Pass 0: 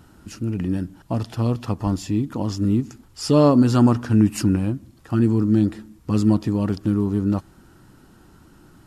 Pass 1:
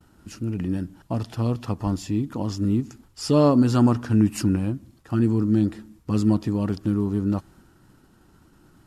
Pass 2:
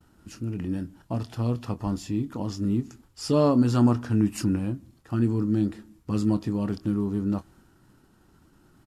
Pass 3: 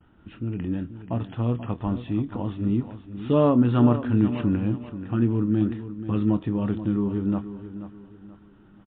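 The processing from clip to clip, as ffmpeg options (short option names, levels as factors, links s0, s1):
-af "agate=range=0.0224:threshold=0.00501:ratio=3:detection=peak,volume=0.75"
-filter_complex "[0:a]asplit=2[s0][s1];[s1]adelay=25,volume=0.251[s2];[s0][s2]amix=inputs=2:normalize=0,volume=0.668"
-af "aecho=1:1:483|966|1449|1932:0.251|0.0879|0.0308|0.0108,volume=1.26" -ar 8000 -c:a libmp3lame -b:a 64k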